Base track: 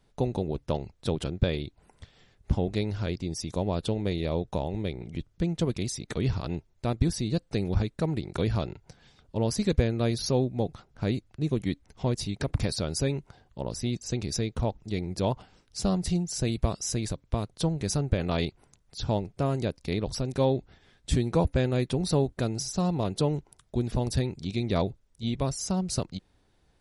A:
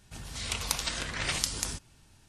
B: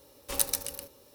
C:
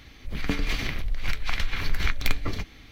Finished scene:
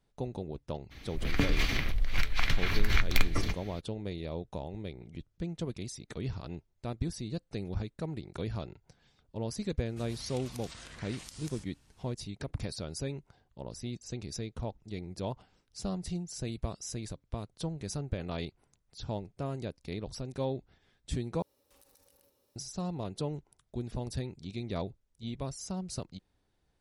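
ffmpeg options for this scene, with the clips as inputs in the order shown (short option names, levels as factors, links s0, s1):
-filter_complex "[0:a]volume=0.355[s0];[1:a]acompressor=threshold=0.0126:ratio=6:attack=3.2:release=140:knee=1:detection=peak[s1];[2:a]acompressor=threshold=0.00447:ratio=4:attack=1.3:release=39:knee=1:detection=peak[s2];[s0]asplit=2[s3][s4];[s3]atrim=end=21.424[s5];[s2]atrim=end=1.14,asetpts=PTS-STARTPTS,volume=0.158[s6];[s4]atrim=start=22.556[s7];[3:a]atrim=end=2.91,asetpts=PTS-STARTPTS,volume=0.891,afade=t=in:d=0.02,afade=t=out:st=2.89:d=0.02,adelay=900[s8];[s1]atrim=end=2.28,asetpts=PTS-STARTPTS,volume=0.473,afade=t=in:d=0.004:c=hsin,afade=t=out:st=2.276:d=0.004:c=hsin,adelay=9850[s9];[s5][s6]acrossfade=d=0.004:c1=hsin:c2=hsin[s10];[s10][s7]acrossfade=d=0.004:c1=hsin:c2=hsin[s11];[s11][s8][s9]amix=inputs=3:normalize=0"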